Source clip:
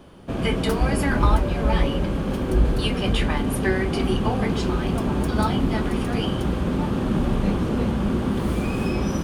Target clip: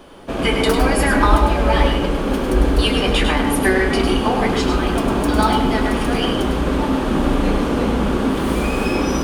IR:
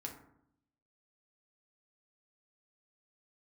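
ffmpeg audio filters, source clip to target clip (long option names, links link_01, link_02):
-filter_complex "[0:a]equalizer=frequency=110:width=0.72:gain=-13.5,asplit=2[link_01][link_02];[1:a]atrim=start_sample=2205,adelay=101[link_03];[link_02][link_03]afir=irnorm=-1:irlink=0,volume=-2dB[link_04];[link_01][link_04]amix=inputs=2:normalize=0,volume=7.5dB"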